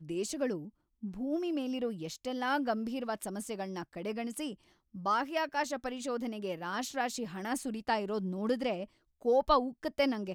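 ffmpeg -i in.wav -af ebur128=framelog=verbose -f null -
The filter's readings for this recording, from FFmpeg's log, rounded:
Integrated loudness:
  I:         -34.3 LUFS
  Threshold: -44.5 LUFS
Loudness range:
  LRA:         3.3 LU
  Threshold: -55.1 LUFS
  LRA low:   -36.1 LUFS
  LRA high:  -32.8 LUFS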